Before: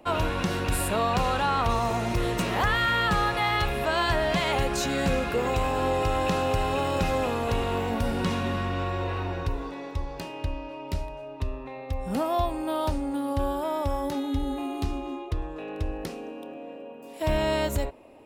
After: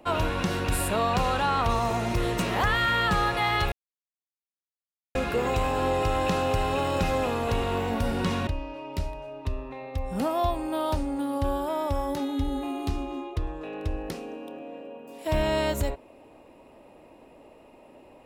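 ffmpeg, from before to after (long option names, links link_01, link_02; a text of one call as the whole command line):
ffmpeg -i in.wav -filter_complex "[0:a]asplit=4[link_01][link_02][link_03][link_04];[link_01]atrim=end=3.72,asetpts=PTS-STARTPTS,afade=type=out:start_time=3.716:duration=0.004:curve=hsin[link_05];[link_02]atrim=start=3.72:end=5.15,asetpts=PTS-STARTPTS,volume=0[link_06];[link_03]atrim=start=5.15:end=8.472,asetpts=PTS-STARTPTS,afade=type=in:duration=0.004:curve=hsin[link_07];[link_04]atrim=start=10.418[link_08];[link_05][link_06][link_07]concat=n=3:v=0:a=1[link_09];[link_09][link_08]acrossfade=duration=0.004:curve1=hsin:curve2=hsin" out.wav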